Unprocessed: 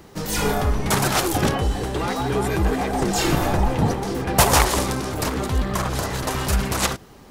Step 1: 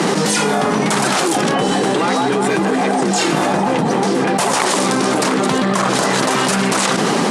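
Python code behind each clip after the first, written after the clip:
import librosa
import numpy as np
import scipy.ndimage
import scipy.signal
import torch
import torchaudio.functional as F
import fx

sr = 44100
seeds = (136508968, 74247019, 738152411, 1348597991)

y = scipy.signal.sosfilt(scipy.signal.ellip(3, 1.0, 40, [180.0, 9500.0], 'bandpass', fs=sr, output='sos'), x)
y = fx.env_flatten(y, sr, amount_pct=100)
y = F.gain(torch.from_numpy(y), -2.5).numpy()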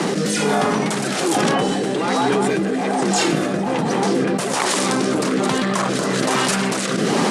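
y = fx.rotary(x, sr, hz=1.2)
y = F.gain(torch.from_numpy(y), -1.0).numpy()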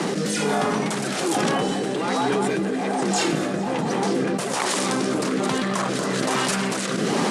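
y = fx.echo_thinned(x, sr, ms=220, feedback_pct=63, hz=420.0, wet_db=-18.0)
y = F.gain(torch.from_numpy(y), -4.0).numpy()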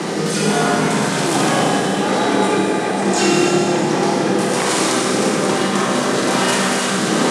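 y = fx.rev_schroeder(x, sr, rt60_s=3.1, comb_ms=25, drr_db=-4.0)
y = F.gain(torch.from_numpy(y), 1.5).numpy()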